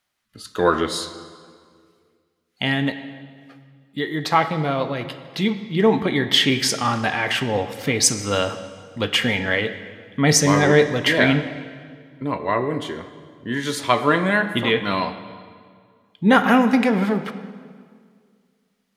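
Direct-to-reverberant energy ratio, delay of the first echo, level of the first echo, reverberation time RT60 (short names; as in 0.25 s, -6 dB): 9.5 dB, none, none, 2.0 s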